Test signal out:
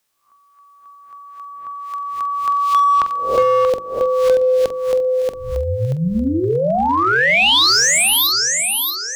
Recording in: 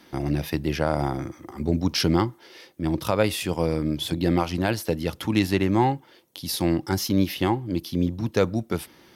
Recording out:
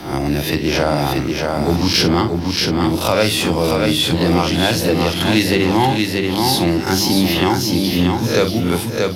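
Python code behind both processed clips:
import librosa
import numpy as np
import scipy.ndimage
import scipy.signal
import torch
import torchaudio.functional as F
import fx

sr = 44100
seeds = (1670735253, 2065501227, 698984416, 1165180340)

p1 = fx.spec_swells(x, sr, rise_s=0.4)
p2 = fx.low_shelf(p1, sr, hz=77.0, db=-2.5)
p3 = fx.hum_notches(p2, sr, base_hz=50, count=8)
p4 = fx.doubler(p3, sr, ms=46.0, db=-11.0)
p5 = p4 + fx.echo_feedback(p4, sr, ms=632, feedback_pct=33, wet_db=-5, dry=0)
p6 = fx.dynamic_eq(p5, sr, hz=4000.0, q=0.83, threshold_db=-39.0, ratio=4.0, max_db=5)
p7 = np.clip(10.0 ** (17.0 / 20.0) * p6, -1.0, 1.0) / 10.0 ** (17.0 / 20.0)
p8 = p6 + F.gain(torch.from_numpy(p7), -7.0).numpy()
p9 = fx.band_squash(p8, sr, depth_pct=40)
y = F.gain(torch.from_numpy(p9), 3.0).numpy()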